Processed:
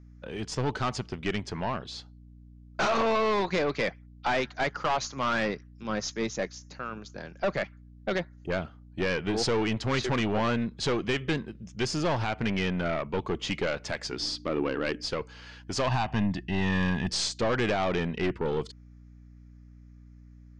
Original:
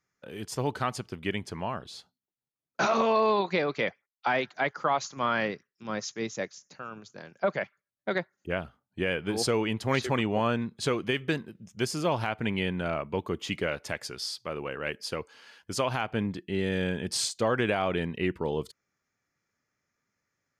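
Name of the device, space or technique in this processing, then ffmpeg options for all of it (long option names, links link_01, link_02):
valve amplifier with mains hum: -filter_complex "[0:a]aeval=exprs='(tanh(22.4*val(0)+0.3)-tanh(0.3))/22.4':channel_layout=same,aeval=exprs='val(0)+0.002*(sin(2*PI*60*n/s)+sin(2*PI*2*60*n/s)/2+sin(2*PI*3*60*n/s)/3+sin(2*PI*4*60*n/s)/4+sin(2*PI*5*60*n/s)/5)':channel_layout=same,lowpass=frequency=6800:width=0.5412,lowpass=frequency=6800:width=1.3066,asettb=1/sr,asplit=3[link_01][link_02][link_03];[link_01]atrim=end=14.124[link_04];[link_02]atrim=start=14.12:end=15.05,asetpts=PTS-STARTPTS,afade=type=in:duration=0.004:curve=qsin,afade=type=out:start_time=0.926:duration=0.004:curve=qsin,equalizer=frequency=290:width_type=o:width=0.54:gain=13.5[link_05];[link_03]atrim=start=15.046[link_06];[link_04][link_05]acrossfade=duration=0.004:curve1=hsin:curve2=qsin[link_07];[link_07][link_06]acrossfade=duration=0.004:curve1=qsin:curve2=hsin,asettb=1/sr,asplit=3[link_08][link_09][link_10];[link_08]atrim=end=15.874[link_11];[link_09]atrim=start=15.87:end=17.1,asetpts=PTS-STARTPTS,afade=type=in:duration=0.004:curve=qsin,afade=type=out:start_time=1.226:duration=0.004:curve=qsin,aecho=1:1:1.1:0.64,atrim=end_sample=54243[link_12];[link_10]atrim=start=17.096[link_13];[link_11][link_12]acrossfade=duration=0.004:curve1=hsin:curve2=qsin[link_14];[link_14][link_13]acrossfade=duration=0.004:curve1=qsin:curve2=hsin,volume=5dB"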